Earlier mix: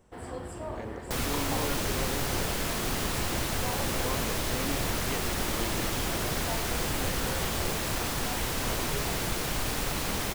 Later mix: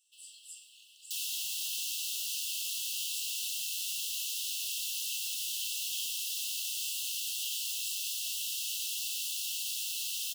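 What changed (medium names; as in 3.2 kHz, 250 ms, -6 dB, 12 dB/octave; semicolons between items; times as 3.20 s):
first sound +3.5 dB; master: add brick-wall FIR high-pass 2.6 kHz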